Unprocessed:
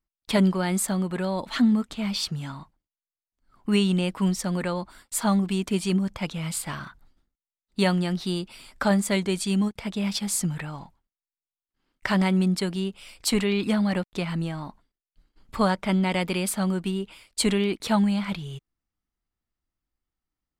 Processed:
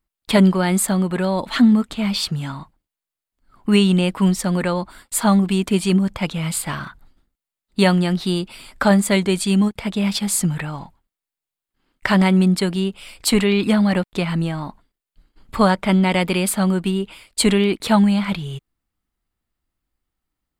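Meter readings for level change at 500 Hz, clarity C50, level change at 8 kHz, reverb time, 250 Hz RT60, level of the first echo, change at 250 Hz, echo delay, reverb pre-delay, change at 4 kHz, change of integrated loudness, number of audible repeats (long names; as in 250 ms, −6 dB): +7.0 dB, no reverb audible, +6.0 dB, no reverb audible, no reverb audible, no echo audible, +7.0 dB, no echo audible, no reverb audible, +6.0 dB, +7.0 dB, no echo audible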